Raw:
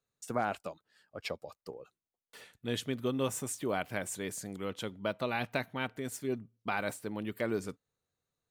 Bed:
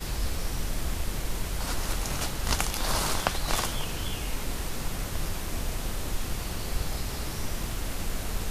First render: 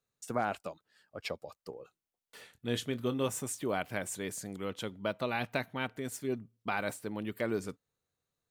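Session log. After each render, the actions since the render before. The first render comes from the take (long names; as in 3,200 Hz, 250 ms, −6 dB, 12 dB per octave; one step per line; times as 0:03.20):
0:01.75–0:03.26: double-tracking delay 25 ms −12 dB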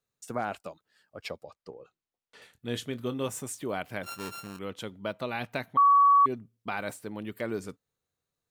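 0:01.43–0:02.42: high-frequency loss of the air 79 metres
0:04.03–0:04.59: samples sorted by size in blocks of 32 samples
0:05.77–0:06.26: beep over 1,130 Hz −16 dBFS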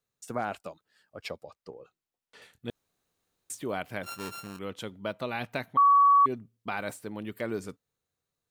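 0:02.70–0:03.50: fill with room tone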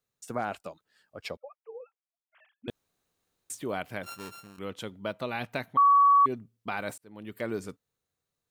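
0:01.37–0:02.68: three sine waves on the formant tracks
0:03.89–0:04.58: fade out, to −11 dB
0:06.98–0:07.43: fade in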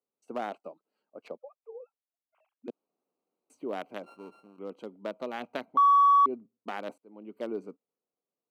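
adaptive Wiener filter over 25 samples
high-pass filter 230 Hz 24 dB per octave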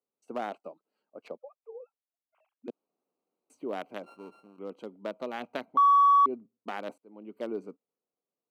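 no processing that can be heard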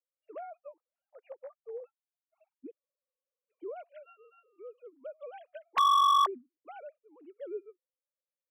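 three sine waves on the formant tracks
hard clipping −20.5 dBFS, distortion −10 dB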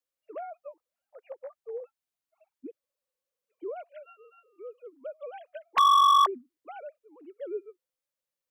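level +4 dB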